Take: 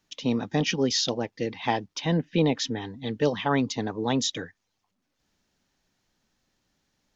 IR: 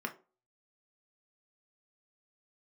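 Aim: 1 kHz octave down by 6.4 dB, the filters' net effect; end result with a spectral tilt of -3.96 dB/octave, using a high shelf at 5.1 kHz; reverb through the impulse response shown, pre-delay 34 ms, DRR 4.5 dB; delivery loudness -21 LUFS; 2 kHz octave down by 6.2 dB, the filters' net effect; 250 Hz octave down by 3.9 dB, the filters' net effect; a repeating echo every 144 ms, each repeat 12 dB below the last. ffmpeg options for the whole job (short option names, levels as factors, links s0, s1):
-filter_complex "[0:a]equalizer=f=250:t=o:g=-4.5,equalizer=f=1000:t=o:g=-7.5,equalizer=f=2000:t=o:g=-7,highshelf=f=5100:g=8,aecho=1:1:144|288|432:0.251|0.0628|0.0157,asplit=2[s0][s1];[1:a]atrim=start_sample=2205,adelay=34[s2];[s1][s2]afir=irnorm=-1:irlink=0,volume=0.422[s3];[s0][s3]amix=inputs=2:normalize=0,volume=2"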